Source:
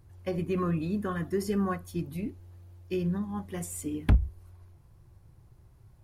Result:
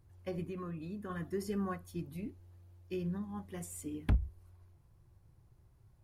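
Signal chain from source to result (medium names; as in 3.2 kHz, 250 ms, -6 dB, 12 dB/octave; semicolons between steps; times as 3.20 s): 0.44–1.10 s: compression 3:1, threshold -33 dBFS, peak gain reduction 6 dB; trim -7.5 dB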